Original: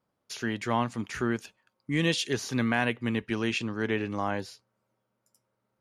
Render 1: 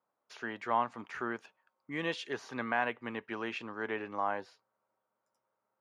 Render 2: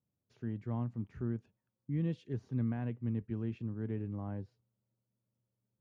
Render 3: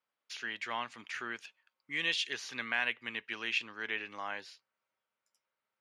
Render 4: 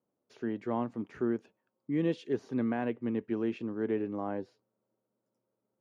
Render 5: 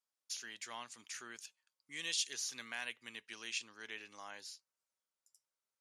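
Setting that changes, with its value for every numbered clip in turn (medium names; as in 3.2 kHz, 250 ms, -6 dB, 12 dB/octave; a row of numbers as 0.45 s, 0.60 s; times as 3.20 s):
band-pass filter, frequency: 970 Hz, 100 Hz, 2.5 kHz, 350 Hz, 7.3 kHz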